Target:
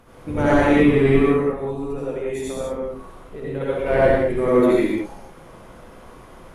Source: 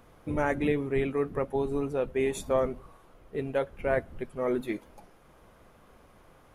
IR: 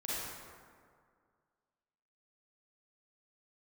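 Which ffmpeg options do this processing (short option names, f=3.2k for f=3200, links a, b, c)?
-filter_complex "[0:a]asplit=3[a][b][c];[a]afade=t=out:st=1.28:d=0.02[d];[b]acompressor=threshold=-39dB:ratio=5,afade=t=in:st=1.28:d=0.02,afade=t=out:st=3.6:d=0.02[e];[c]afade=t=in:st=3.6:d=0.02[f];[d][e][f]amix=inputs=3:normalize=0,asoftclip=type=tanh:threshold=-17.5dB[g];[1:a]atrim=start_sample=2205,afade=t=out:st=0.22:d=0.01,atrim=end_sample=10143,asetrate=24696,aresample=44100[h];[g][h]afir=irnorm=-1:irlink=0,volume=7dB"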